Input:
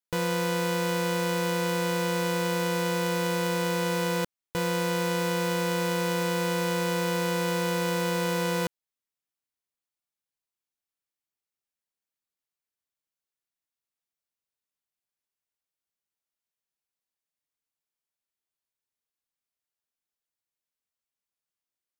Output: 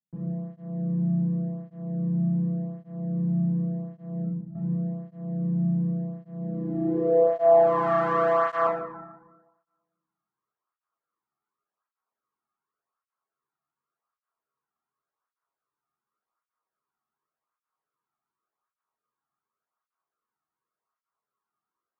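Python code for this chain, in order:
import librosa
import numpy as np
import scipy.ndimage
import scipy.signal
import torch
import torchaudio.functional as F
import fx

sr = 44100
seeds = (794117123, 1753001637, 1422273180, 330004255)

y = fx.highpass(x, sr, hz=44.0, slope=6)
y = fx.peak_eq(y, sr, hz=8600.0, db=9.5, octaves=0.36)
y = fx.hum_notches(y, sr, base_hz=50, count=5)
y = (np.mod(10.0 ** (25.0 / 20.0) * y + 1.0, 2.0) - 1.0) / 10.0 ** (25.0 / 20.0)
y = fx.rev_fdn(y, sr, rt60_s=1.2, lf_ratio=1.3, hf_ratio=0.5, size_ms=43.0, drr_db=-2.0)
y = fx.tube_stage(y, sr, drive_db=25.0, bias=0.7)
y = fx.filter_sweep_lowpass(y, sr, from_hz=180.0, to_hz=1200.0, start_s=6.4, end_s=7.93, q=4.8)
y = fx.flanger_cancel(y, sr, hz=0.88, depth_ms=2.1)
y = y * 10.0 ** (7.0 / 20.0)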